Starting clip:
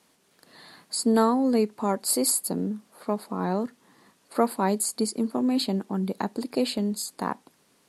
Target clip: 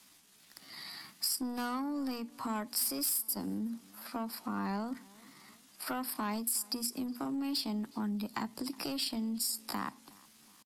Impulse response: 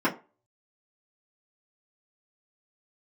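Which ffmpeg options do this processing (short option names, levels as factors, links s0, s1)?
-filter_complex "[0:a]lowshelf=f=63:g=8.5,acrossover=split=370|400|2300[s0][s1][s2][s3];[s3]acontrast=49[s4];[s0][s1][s2][s4]amix=inputs=4:normalize=0,asoftclip=type=tanh:threshold=0.126,atempo=0.68,acompressor=threshold=0.0282:ratio=6,asetrate=48000,aresample=44100,equalizer=f=480:w=1.7:g=-11.5,bandreject=f=60:t=h:w=6,bandreject=f=120:t=h:w=6,bandreject=f=180:t=h:w=6,bandreject=f=240:t=h:w=6,asplit=2[s5][s6];[s6]adelay=367,lowpass=f=4600:p=1,volume=0.0631,asplit=2[s7][s8];[s8]adelay=367,lowpass=f=4600:p=1,volume=0.46,asplit=2[s9][s10];[s10]adelay=367,lowpass=f=4600:p=1,volume=0.46[s11];[s5][s7][s9][s11]amix=inputs=4:normalize=0"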